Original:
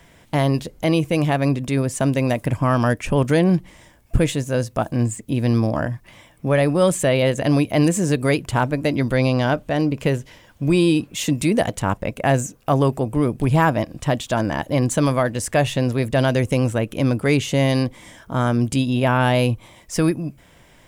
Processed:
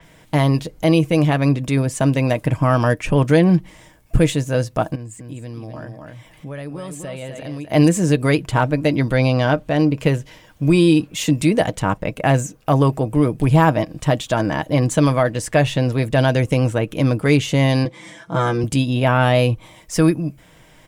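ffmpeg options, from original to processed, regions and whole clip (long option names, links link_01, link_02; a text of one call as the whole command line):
ffmpeg -i in.wav -filter_complex "[0:a]asettb=1/sr,asplit=3[link_01][link_02][link_03];[link_01]atrim=end=4.954[link_04];[link_02]atrim=start=4.95:end=7.72,asetpts=PTS-STARTPTS,afade=type=in:duration=0.004:curve=qsin,afade=type=out:start_time=2.766:duration=0.004:curve=qsin,aecho=1:1:252:0.422,atrim=end_sample=122157,acompressor=threshold=-42dB:ratio=2:attack=3.2:release=140:knee=1:detection=peak[link_05];[link_03]atrim=start=7.716[link_06];[link_04][link_05]acrossfade=duration=0.004:curve1=hsin:curve2=qsin[link_07];[link_07][link_06]acrossfade=duration=0.004:curve1=qsin:curve2=hsin,asettb=1/sr,asplit=3[link_08][link_09][link_10];[link_08]atrim=end=17.854[link_11];[link_09]atrim=start=17.85:end=18.64,asetpts=PTS-STARTPTS,afade=type=in:duration=0.004:curve=qsin,afade=type=out:start_time=0.786:duration=0.004:curve=qsin,highpass=140,lowpass=7900,aecho=1:1:5.9:0.74,atrim=end_sample=34839[link_12];[link_10]atrim=start=18.636[link_13];[link_11][link_12]acrossfade=duration=0.004:curve1=hsin:curve2=qsin[link_14];[link_14][link_13]acrossfade=duration=0.004:curve1=qsin:curve2=hsin,aecho=1:1:6.4:0.34,adynamicequalizer=threshold=0.00708:dfrequency=6500:dqfactor=0.7:tfrequency=6500:tqfactor=0.7:attack=5:release=100:ratio=0.375:range=3:mode=cutabove:tftype=highshelf,volume=1.5dB" out.wav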